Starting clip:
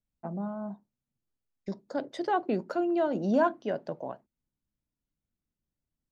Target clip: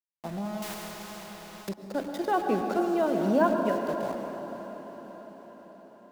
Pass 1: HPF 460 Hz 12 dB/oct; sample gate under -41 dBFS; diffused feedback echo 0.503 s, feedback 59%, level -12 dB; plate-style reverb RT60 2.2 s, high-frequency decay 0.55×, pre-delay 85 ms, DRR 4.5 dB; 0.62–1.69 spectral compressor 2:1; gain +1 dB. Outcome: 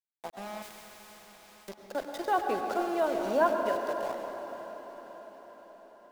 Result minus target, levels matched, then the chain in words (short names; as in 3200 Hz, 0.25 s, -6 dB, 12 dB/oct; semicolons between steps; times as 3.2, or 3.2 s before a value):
125 Hz band -12.5 dB
HPF 120 Hz 12 dB/oct; sample gate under -41 dBFS; diffused feedback echo 0.503 s, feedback 59%, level -12 dB; plate-style reverb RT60 2.2 s, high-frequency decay 0.55×, pre-delay 85 ms, DRR 4.5 dB; 0.62–1.69 spectral compressor 2:1; gain +1 dB